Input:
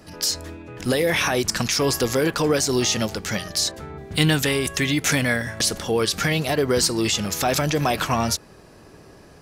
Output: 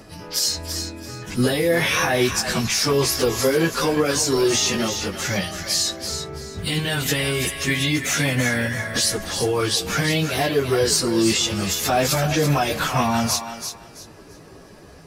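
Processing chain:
brickwall limiter −13.5 dBFS, peak gain reduction 9.5 dB
time stretch by phase vocoder 1.6×
feedback echo with a high-pass in the loop 334 ms, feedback 27%, high-pass 640 Hz, level −7.5 dB
level +5 dB

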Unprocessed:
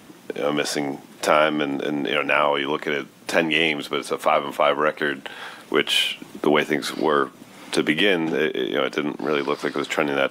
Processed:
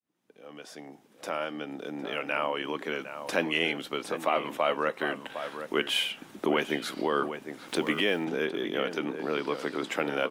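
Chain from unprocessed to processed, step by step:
fade in at the beginning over 3.21 s
slap from a distant wall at 130 metres, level −9 dB
0:07.68–0:08.25: centre clipping without the shift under −39 dBFS
level −8 dB

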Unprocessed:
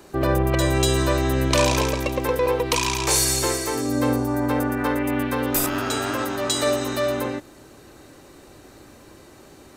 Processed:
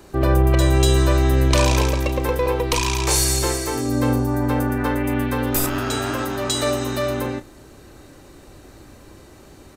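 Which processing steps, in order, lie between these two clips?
low-shelf EQ 100 Hz +10.5 dB
double-tracking delay 33 ms −13 dB

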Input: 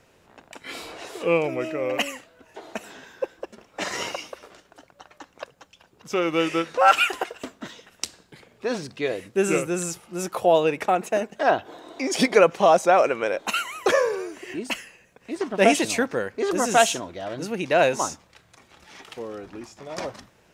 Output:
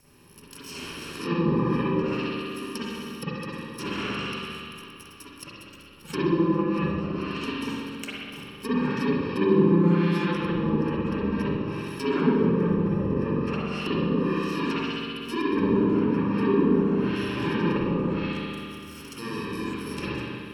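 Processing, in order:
samples in bit-reversed order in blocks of 64 samples
brickwall limiter −14 dBFS, peak gain reduction 10 dB
on a send: bucket-brigade delay 65 ms, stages 2,048, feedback 83%, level −7 dB
on the sum: treble cut that deepens with the level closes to 640 Hz, closed at −20.5 dBFS
spring reverb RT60 1.2 s, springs 40/47/52 ms, chirp 25 ms, DRR −9 dB
level −1.5 dB

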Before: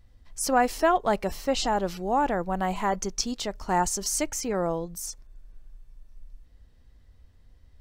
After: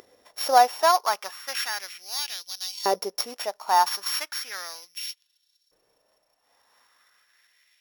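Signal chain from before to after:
samples sorted by size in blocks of 8 samples
upward compression, threshold −33 dBFS
auto-filter high-pass saw up 0.35 Hz 420–4,600 Hz

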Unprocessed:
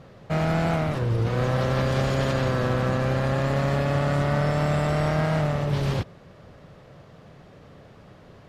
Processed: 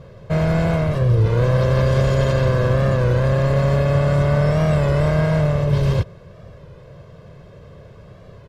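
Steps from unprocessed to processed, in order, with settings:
low-shelf EQ 450 Hz +7 dB
comb filter 1.9 ms, depth 61%
wow of a warped record 33 1/3 rpm, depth 100 cents

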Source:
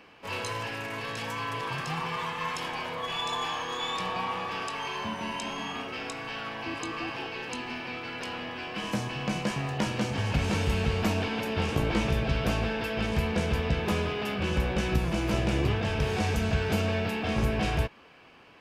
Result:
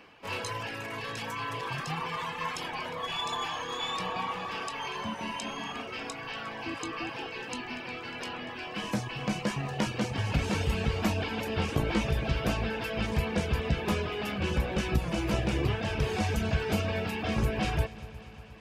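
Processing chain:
reverb reduction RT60 0.73 s
echo machine with several playback heads 119 ms, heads second and third, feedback 64%, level −20 dB

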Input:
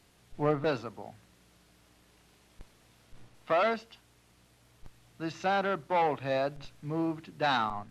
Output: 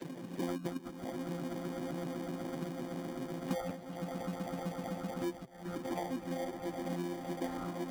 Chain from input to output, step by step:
channel vocoder with a chord as carrier bare fifth, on F3
high-pass filter 220 Hz 6 dB per octave
gate on every frequency bin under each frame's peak −25 dB strong
0:01.03–0:03.70: low-shelf EQ 360 Hz +8.5 dB
harmonic and percussive parts rebalanced harmonic −16 dB
tilt shelving filter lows +6 dB, about 650 Hz
on a send: echo that builds up and dies away 127 ms, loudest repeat 8, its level −14 dB
0:05.33–0:05.85: on the sum: volume swells 787 ms
flanger 1.5 Hz, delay 5.5 ms, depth 5.6 ms, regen +46%
in parallel at −3 dB: decimation without filtering 33×
on the sum: multiband upward and downward compressor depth 100%
level +5.5 dB

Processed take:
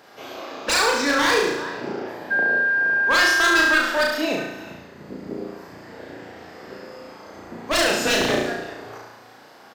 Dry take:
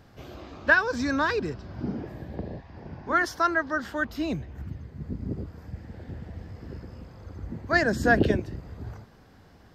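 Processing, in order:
high-pass filter 460 Hz 12 dB per octave
in parallel at +2 dB: brickwall limiter −19.5 dBFS, peak gain reduction 10.5 dB
on the sum: single-tap delay 386 ms −18 dB
wave folding −18.5 dBFS
flutter between parallel walls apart 6 metres, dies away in 0.87 s
0:02.30–0:03.79: steady tone 1,600 Hz −19 dBFS
level +2 dB

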